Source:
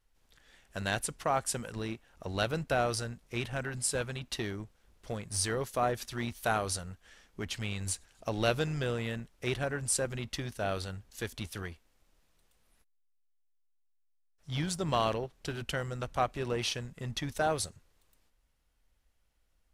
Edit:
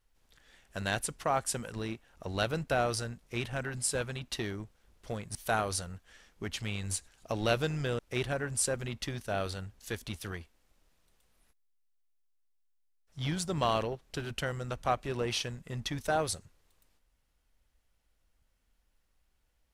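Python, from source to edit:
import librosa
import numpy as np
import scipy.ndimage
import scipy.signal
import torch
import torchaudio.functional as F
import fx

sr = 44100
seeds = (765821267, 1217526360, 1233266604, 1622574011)

y = fx.edit(x, sr, fx.cut(start_s=5.35, length_s=0.97),
    fx.cut(start_s=8.96, length_s=0.34), tone=tone)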